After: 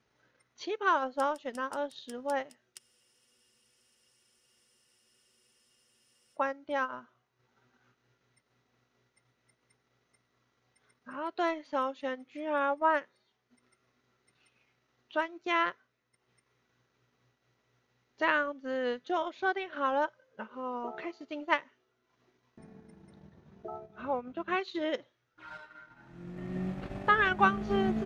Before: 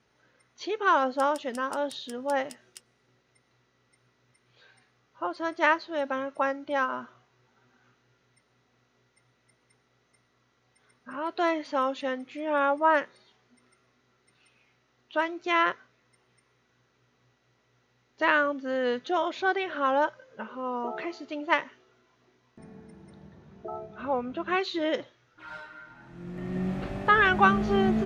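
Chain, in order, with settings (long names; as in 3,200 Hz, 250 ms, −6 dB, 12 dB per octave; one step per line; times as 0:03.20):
transient designer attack +2 dB, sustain −8 dB
frozen spectrum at 0:02.80, 3.56 s
level −5 dB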